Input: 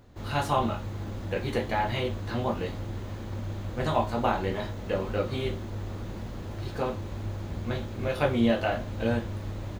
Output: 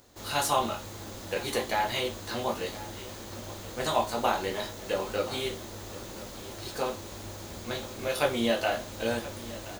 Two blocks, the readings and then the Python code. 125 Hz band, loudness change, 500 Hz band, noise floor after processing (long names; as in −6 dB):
−10.5 dB, −1.5 dB, −0.5 dB, −43 dBFS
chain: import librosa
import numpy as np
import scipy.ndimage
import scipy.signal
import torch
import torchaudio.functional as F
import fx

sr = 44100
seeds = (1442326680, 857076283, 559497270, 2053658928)

y = fx.bass_treble(x, sr, bass_db=-11, treble_db=14)
y = y + 10.0 ** (-17.0 / 20.0) * np.pad(y, (int(1026 * sr / 1000.0), 0))[:len(y)]